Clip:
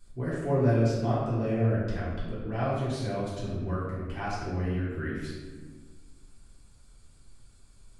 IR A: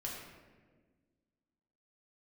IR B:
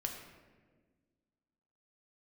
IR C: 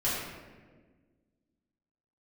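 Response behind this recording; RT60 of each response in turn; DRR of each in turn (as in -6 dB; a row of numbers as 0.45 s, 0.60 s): C; 1.5 s, 1.5 s, 1.5 s; -4.0 dB, 2.0 dB, -10.0 dB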